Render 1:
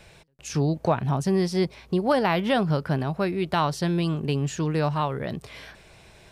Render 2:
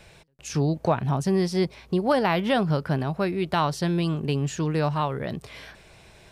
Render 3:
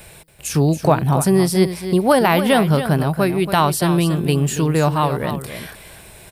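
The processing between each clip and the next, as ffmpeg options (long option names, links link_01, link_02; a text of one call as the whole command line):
ffmpeg -i in.wav -af anull out.wav
ffmpeg -i in.wav -filter_complex "[0:a]aexciter=amount=3.3:drive=9.1:freq=8300,asplit=2[link_01][link_02];[link_02]aecho=0:1:280:0.299[link_03];[link_01][link_03]amix=inputs=2:normalize=0,volume=7.5dB" out.wav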